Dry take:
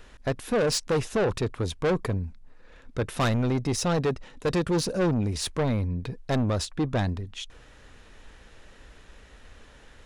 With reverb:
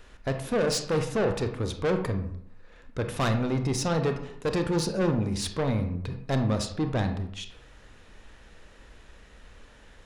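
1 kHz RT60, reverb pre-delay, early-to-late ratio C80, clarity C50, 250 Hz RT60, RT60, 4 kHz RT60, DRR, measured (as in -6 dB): 0.70 s, 26 ms, 11.5 dB, 8.0 dB, 0.70 s, 0.70 s, 0.40 s, 6.0 dB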